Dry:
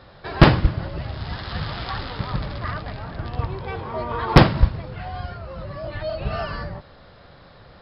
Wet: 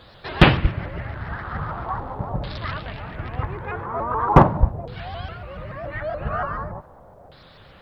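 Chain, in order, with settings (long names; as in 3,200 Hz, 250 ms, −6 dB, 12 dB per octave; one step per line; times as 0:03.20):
auto-filter low-pass saw down 0.41 Hz 690–4,200 Hz
bit-depth reduction 12 bits, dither none
pitch modulation by a square or saw wave saw up 7 Hz, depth 160 cents
level −1.5 dB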